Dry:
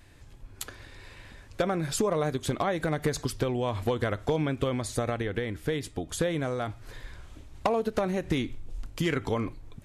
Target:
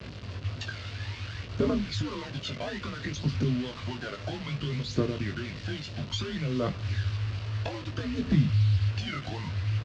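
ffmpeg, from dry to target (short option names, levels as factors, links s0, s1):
-filter_complex "[0:a]lowshelf=f=210:g=5,acompressor=threshold=0.0398:ratio=16,aresample=16000,asoftclip=type=tanh:threshold=0.0422,aresample=44100,aeval=exprs='val(0)+0.00316*(sin(2*PI*60*n/s)+sin(2*PI*2*60*n/s)/2+sin(2*PI*3*60*n/s)/3+sin(2*PI*4*60*n/s)/4+sin(2*PI*5*60*n/s)/5)':c=same,aphaser=in_gain=1:out_gain=1:delay=1.4:decay=0.73:speed=0.6:type=triangular,afreqshift=-120,acrusher=bits=6:mix=0:aa=0.000001,highpass=120,equalizer=f=140:t=q:w=4:g=9,equalizer=f=240:t=q:w=4:g=5,equalizer=f=820:t=q:w=4:g=-8,equalizer=f=2800:t=q:w=4:g=5,equalizer=f=4500:t=q:w=4:g=4,lowpass=f=5300:w=0.5412,lowpass=f=5300:w=1.3066,asplit=2[s0][s1];[s1]adelay=20,volume=0.531[s2];[s0][s2]amix=inputs=2:normalize=0"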